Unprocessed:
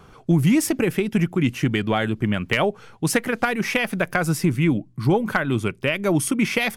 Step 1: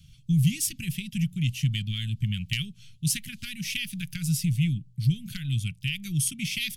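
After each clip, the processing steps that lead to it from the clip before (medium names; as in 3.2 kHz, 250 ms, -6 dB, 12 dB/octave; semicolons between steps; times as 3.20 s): Chebyshev band-stop 150–3000 Hz, order 3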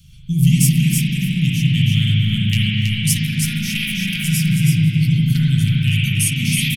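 treble shelf 8.4 kHz +7 dB; delay 323 ms -4.5 dB; spring tank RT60 3 s, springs 38/59 ms, chirp 70 ms, DRR -6 dB; trim +4 dB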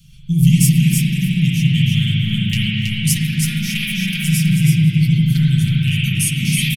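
comb 5.8 ms, depth 54%; echo from a far wall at 19 m, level -24 dB; trim -1 dB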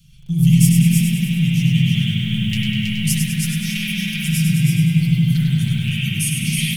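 bit-crushed delay 100 ms, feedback 55%, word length 7-bit, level -5.5 dB; trim -3.5 dB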